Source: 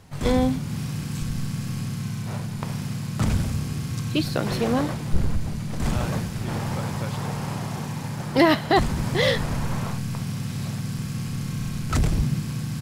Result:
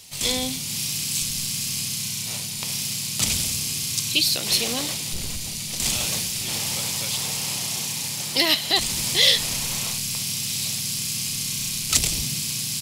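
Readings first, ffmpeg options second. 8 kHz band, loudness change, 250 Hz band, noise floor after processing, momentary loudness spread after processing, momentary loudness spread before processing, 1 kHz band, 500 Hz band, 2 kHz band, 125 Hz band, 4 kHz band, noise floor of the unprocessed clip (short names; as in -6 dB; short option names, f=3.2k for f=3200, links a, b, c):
+17.0 dB, +3.5 dB, -9.5 dB, -31 dBFS, 7 LU, 9 LU, -7.5 dB, -8.5 dB, +1.5 dB, -10.5 dB, +13.0 dB, -32 dBFS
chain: -filter_complex "[0:a]lowshelf=f=220:g=-7,asplit=2[a][b];[b]alimiter=limit=-17dB:level=0:latency=1:release=155,volume=3dB[c];[a][c]amix=inputs=2:normalize=0,aexciter=amount=11.3:drive=2.4:freq=2.3k,volume=-12.5dB"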